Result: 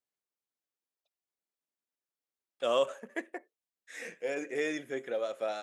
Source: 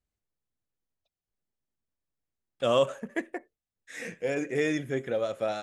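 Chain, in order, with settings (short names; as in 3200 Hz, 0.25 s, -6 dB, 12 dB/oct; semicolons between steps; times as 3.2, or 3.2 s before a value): HPF 340 Hz 12 dB/oct; gain -3.5 dB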